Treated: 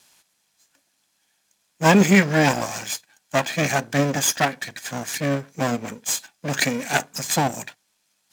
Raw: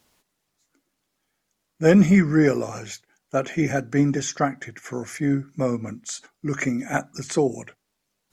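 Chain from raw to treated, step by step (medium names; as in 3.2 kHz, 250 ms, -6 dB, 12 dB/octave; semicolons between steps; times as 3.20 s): comb filter that takes the minimum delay 1.2 ms; high-pass 170 Hz 12 dB/octave; treble shelf 2.3 kHz +11.5 dB; decimation joined by straight lines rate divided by 2×; trim +2.5 dB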